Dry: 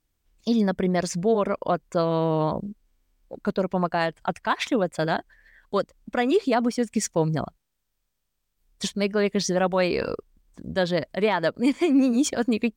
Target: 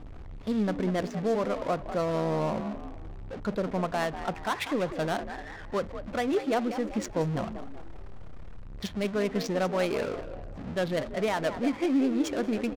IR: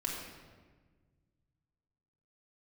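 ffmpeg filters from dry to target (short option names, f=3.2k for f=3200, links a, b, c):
-filter_complex "[0:a]aeval=exprs='val(0)+0.5*0.0422*sgn(val(0))':c=same,asplit=6[a][b][c][d][e][f];[b]adelay=194,afreqshift=59,volume=-10.5dB[g];[c]adelay=388,afreqshift=118,volume=-17.6dB[h];[d]adelay=582,afreqshift=177,volume=-24.8dB[i];[e]adelay=776,afreqshift=236,volume=-31.9dB[j];[f]adelay=970,afreqshift=295,volume=-39dB[k];[a][g][h][i][j][k]amix=inputs=6:normalize=0,asplit=2[l][m];[1:a]atrim=start_sample=2205,afade=t=out:st=0.17:d=0.01,atrim=end_sample=7938,asetrate=88200,aresample=44100[n];[m][n]afir=irnorm=-1:irlink=0,volume=-11dB[o];[l][o]amix=inputs=2:normalize=0,adynamicsmooth=sensitivity=3:basefreq=630,volume=-8dB"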